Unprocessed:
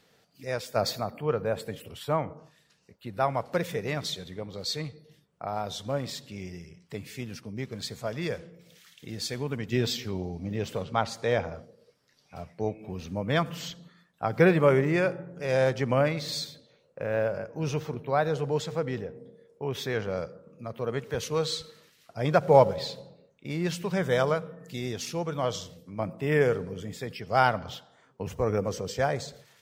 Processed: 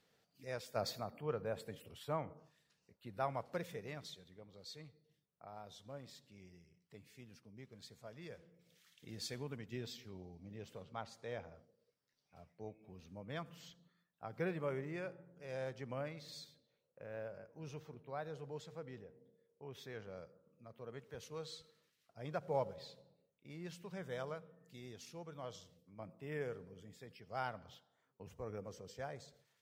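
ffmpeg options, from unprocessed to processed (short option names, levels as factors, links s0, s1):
-af "volume=0.708,afade=t=out:st=3.31:d=0.92:silence=0.398107,afade=t=in:st=8.28:d=1:silence=0.354813,afade=t=out:st=9.28:d=0.52:silence=0.398107"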